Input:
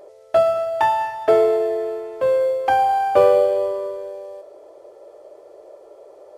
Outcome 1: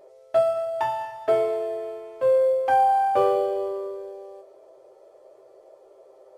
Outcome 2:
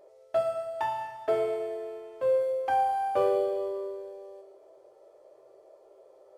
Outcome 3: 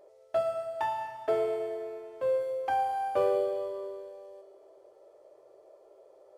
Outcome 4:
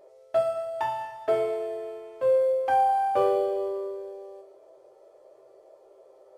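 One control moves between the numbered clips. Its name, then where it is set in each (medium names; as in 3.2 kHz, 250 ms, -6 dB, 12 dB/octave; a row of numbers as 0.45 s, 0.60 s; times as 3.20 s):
feedback comb, decay: 0.18 s, 0.96 s, 2.1 s, 0.44 s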